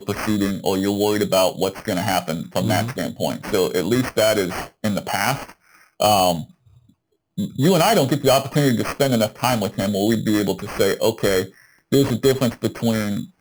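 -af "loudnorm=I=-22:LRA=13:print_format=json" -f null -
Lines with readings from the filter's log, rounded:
"input_i" : "-20.4",
"input_tp" : "-3.7",
"input_lra" : "2.4",
"input_thresh" : "-30.8",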